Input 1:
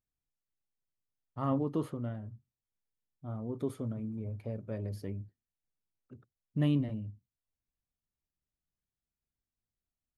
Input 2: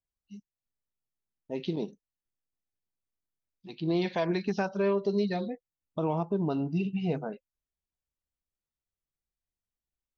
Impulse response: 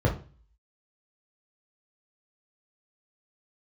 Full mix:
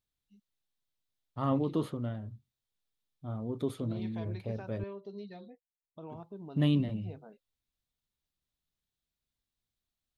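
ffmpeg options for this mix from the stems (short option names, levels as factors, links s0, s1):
-filter_complex "[0:a]volume=1.19,asplit=3[s0][s1][s2];[s0]atrim=end=4.84,asetpts=PTS-STARTPTS,afade=t=out:st=4.836:d=0.004:c=hsin[s3];[s1]atrim=start=4.84:end=6.09,asetpts=PTS-STARTPTS,volume=0[s4];[s2]atrim=start=6.09,asetpts=PTS-STARTPTS,afade=t=in:d=0.004:c=hsin[s5];[s3][s4][s5]concat=n=3:v=0:a=1[s6];[1:a]equalizer=f=4800:w=1.1:g=-9,volume=0.15[s7];[s6][s7]amix=inputs=2:normalize=0,equalizer=f=3700:w=2.3:g=9"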